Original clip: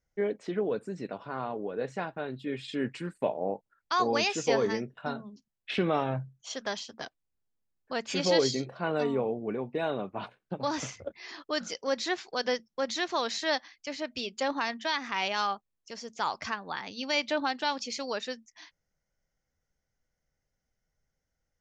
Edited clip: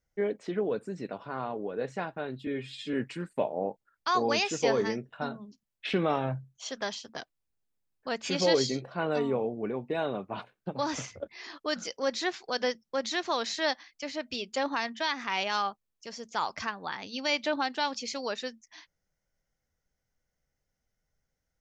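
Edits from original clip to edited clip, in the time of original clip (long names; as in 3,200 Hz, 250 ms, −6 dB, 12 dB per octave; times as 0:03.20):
0:02.47–0:02.78: time-stretch 1.5×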